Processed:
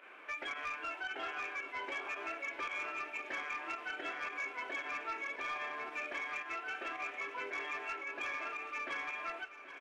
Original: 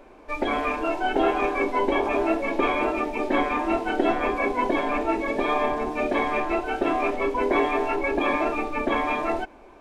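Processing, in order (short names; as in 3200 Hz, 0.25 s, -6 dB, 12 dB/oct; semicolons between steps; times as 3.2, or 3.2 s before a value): HPF 420 Hz 12 dB/oct; band shelf 2000 Hz +15 dB; compressor 3:1, threshold -32 dBFS, peak gain reduction 16 dB; flange 0.29 Hz, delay 9.2 ms, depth 2 ms, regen +79%; pump 112 bpm, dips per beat 1, -10 dB, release 68 ms; soft clip -27.5 dBFS, distortion -18 dB; feedback echo 0.779 s, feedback 54%, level -14 dB; gain -4.5 dB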